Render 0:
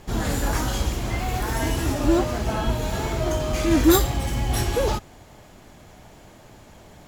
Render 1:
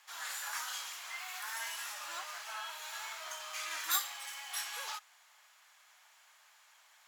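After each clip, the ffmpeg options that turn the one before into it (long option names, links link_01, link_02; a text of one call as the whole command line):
ffmpeg -i in.wav -af "highpass=frequency=1100:width=0.5412,highpass=frequency=1100:width=1.3066,volume=-8dB" out.wav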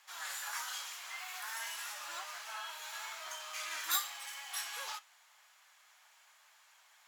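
ffmpeg -i in.wav -af "flanger=delay=5.1:depth=3.4:regen=76:speed=0.89:shape=sinusoidal,volume=3.5dB" out.wav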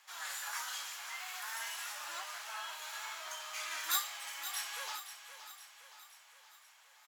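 ffmpeg -i in.wav -af "aecho=1:1:520|1040|1560|2080|2600|3120:0.282|0.152|0.0822|0.0444|0.024|0.0129" out.wav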